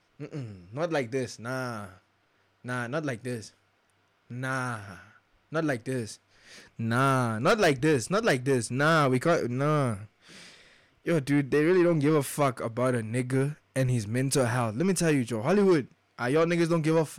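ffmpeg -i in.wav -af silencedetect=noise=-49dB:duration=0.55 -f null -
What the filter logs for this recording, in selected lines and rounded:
silence_start: 1.98
silence_end: 2.65 | silence_duration: 0.67
silence_start: 3.50
silence_end: 4.30 | silence_duration: 0.80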